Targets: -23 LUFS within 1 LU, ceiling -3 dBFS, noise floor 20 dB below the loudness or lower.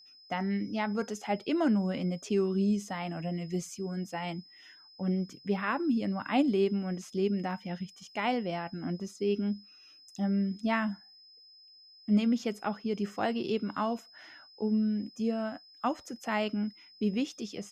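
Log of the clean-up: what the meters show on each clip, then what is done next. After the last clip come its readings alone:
steady tone 5.1 kHz; tone level -54 dBFS; loudness -32.0 LUFS; peak level -16.0 dBFS; loudness target -23.0 LUFS
-> band-stop 5.1 kHz, Q 30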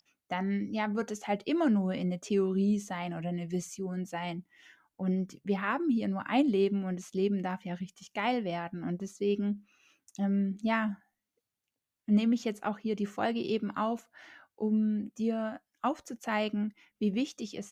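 steady tone not found; loudness -32.0 LUFS; peak level -16.0 dBFS; loudness target -23.0 LUFS
-> trim +9 dB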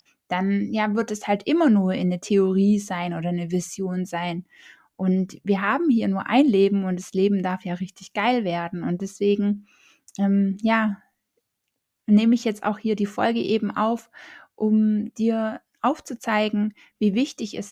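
loudness -23.0 LUFS; peak level -7.0 dBFS; noise floor -79 dBFS

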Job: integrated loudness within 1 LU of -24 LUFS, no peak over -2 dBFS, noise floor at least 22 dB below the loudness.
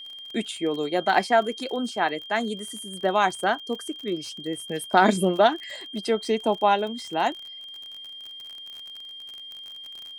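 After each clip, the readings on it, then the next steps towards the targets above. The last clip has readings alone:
tick rate 40 per s; steady tone 3.2 kHz; tone level -38 dBFS; loudness -25.0 LUFS; peak level -4.0 dBFS; loudness target -24.0 LUFS
-> de-click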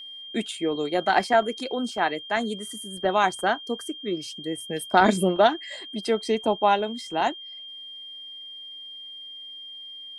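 tick rate 0 per s; steady tone 3.2 kHz; tone level -38 dBFS
-> band-stop 3.2 kHz, Q 30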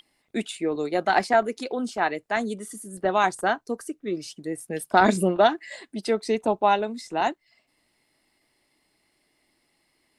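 steady tone not found; loudness -25.0 LUFS; peak level -4.0 dBFS; loudness target -24.0 LUFS
-> trim +1 dB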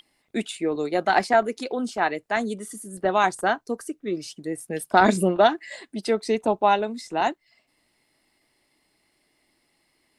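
loudness -24.0 LUFS; peak level -3.0 dBFS; noise floor -70 dBFS

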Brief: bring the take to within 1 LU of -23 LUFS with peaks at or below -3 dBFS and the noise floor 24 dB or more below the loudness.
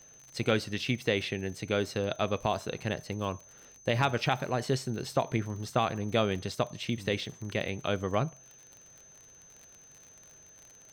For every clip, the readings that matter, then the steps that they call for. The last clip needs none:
tick rate 48 per s; steady tone 6.2 kHz; tone level -53 dBFS; loudness -31.5 LUFS; peak level -14.0 dBFS; loudness target -23.0 LUFS
-> de-click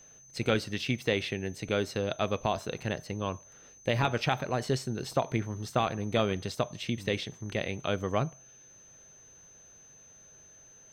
tick rate 1.1 per s; steady tone 6.2 kHz; tone level -53 dBFS
-> band-stop 6.2 kHz, Q 30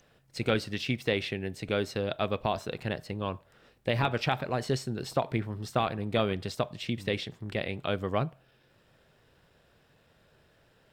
steady tone not found; loudness -31.5 LUFS; peak level -13.5 dBFS; loudness target -23.0 LUFS
-> trim +8.5 dB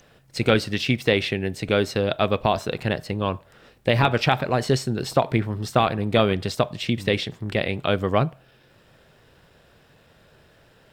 loudness -23.0 LUFS; peak level -5.0 dBFS; noise floor -57 dBFS

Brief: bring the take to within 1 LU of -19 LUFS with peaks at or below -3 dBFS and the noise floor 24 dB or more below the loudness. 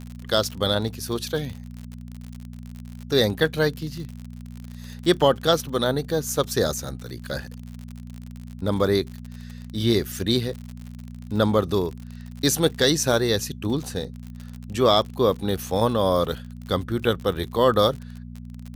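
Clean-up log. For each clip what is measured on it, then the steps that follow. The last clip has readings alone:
tick rate 59 per s; hum 60 Hz; highest harmonic 240 Hz; hum level -36 dBFS; loudness -23.5 LUFS; peak level -5.5 dBFS; loudness target -19.0 LUFS
-> de-click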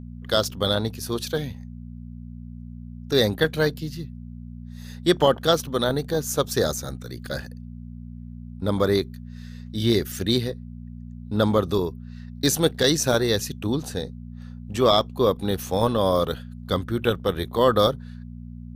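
tick rate 2.7 per s; hum 60 Hz; highest harmonic 240 Hz; hum level -36 dBFS
-> de-hum 60 Hz, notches 4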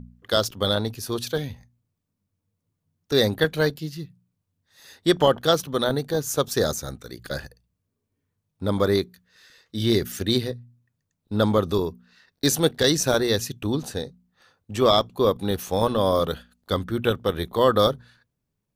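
hum not found; loudness -23.5 LUFS; peak level -5.5 dBFS; loudness target -19.0 LUFS
-> trim +4.5 dB; peak limiter -3 dBFS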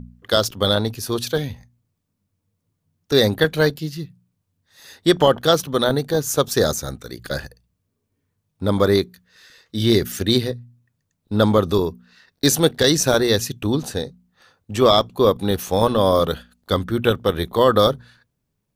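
loudness -19.5 LUFS; peak level -3.0 dBFS; noise floor -76 dBFS

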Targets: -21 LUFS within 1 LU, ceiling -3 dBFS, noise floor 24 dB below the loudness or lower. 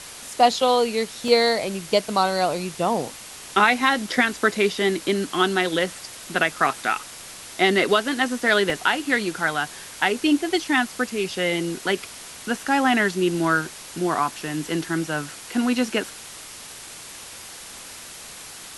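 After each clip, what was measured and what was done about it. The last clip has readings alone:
dropouts 2; longest dropout 2.1 ms; noise floor -40 dBFS; noise floor target -46 dBFS; loudness -22.0 LUFS; peak level -3.5 dBFS; loudness target -21.0 LUFS
-> interpolate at 1.28/8.70 s, 2.1 ms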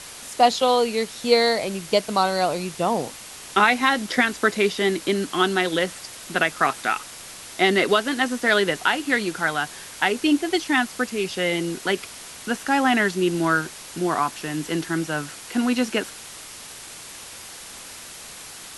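dropouts 0; noise floor -40 dBFS; noise floor target -46 dBFS
-> noise print and reduce 6 dB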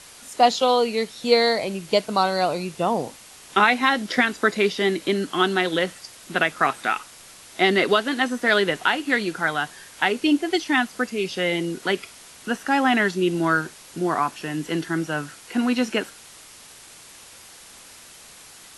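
noise floor -46 dBFS; noise floor target -47 dBFS
-> noise print and reduce 6 dB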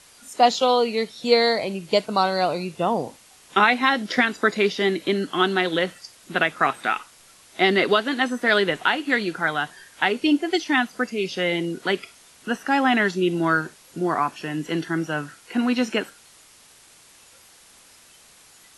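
noise floor -52 dBFS; loudness -22.5 LUFS; peak level -3.5 dBFS; loudness target -21.0 LUFS
-> trim +1.5 dB; peak limiter -3 dBFS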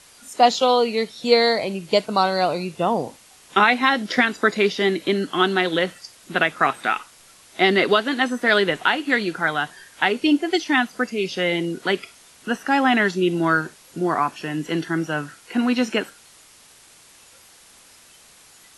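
loudness -21.0 LUFS; peak level -3.0 dBFS; noise floor -50 dBFS

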